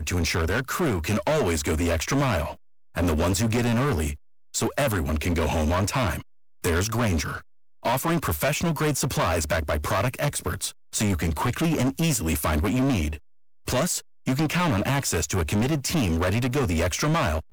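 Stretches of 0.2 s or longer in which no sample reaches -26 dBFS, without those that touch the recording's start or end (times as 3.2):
2.5–2.97
4.12–4.55
6.18–6.64
7.35–7.85
10.68–10.95
13.15–13.68
13.98–14.27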